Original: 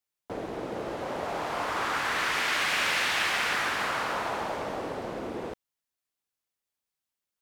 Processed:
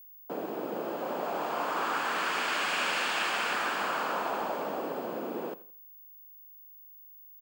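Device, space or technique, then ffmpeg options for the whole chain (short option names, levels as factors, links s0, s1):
old television with a line whistle: -af "highpass=f=180:w=0.5412,highpass=f=180:w=1.3066,equalizer=f=2000:t=q:w=4:g=-9,equalizer=f=3800:t=q:w=4:g=-7,equalizer=f=5800:t=q:w=4:g=-8,lowpass=f=8600:w=0.5412,lowpass=f=8600:w=1.3066,aeval=exprs='val(0)+0.00355*sin(2*PI*15625*n/s)':c=same,aecho=1:1:83|166|249:0.126|0.0415|0.0137"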